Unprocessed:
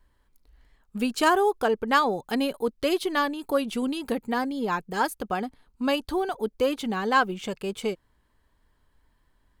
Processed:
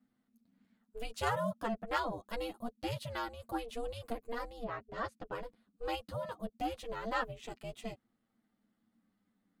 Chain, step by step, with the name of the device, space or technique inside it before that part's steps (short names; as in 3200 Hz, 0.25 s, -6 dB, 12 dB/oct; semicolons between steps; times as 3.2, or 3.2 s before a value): 4.63–5.31 LPF 2600 Hz -> 5200 Hz 12 dB/oct; alien voice (ring modulator 230 Hz; flange 0.26 Hz, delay 8.3 ms, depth 1.9 ms, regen -2%); gain -7 dB